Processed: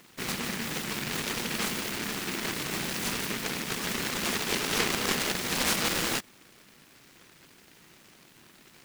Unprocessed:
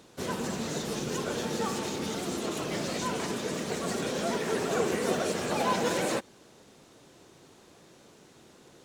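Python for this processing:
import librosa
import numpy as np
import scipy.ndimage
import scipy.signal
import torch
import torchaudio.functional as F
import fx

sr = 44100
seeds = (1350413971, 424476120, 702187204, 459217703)

y = scipy.signal.sosfilt(scipy.signal.butter(2, 110.0, 'highpass', fs=sr, output='sos'), x)
y = fx.noise_mod_delay(y, sr, seeds[0], noise_hz=1900.0, depth_ms=0.5)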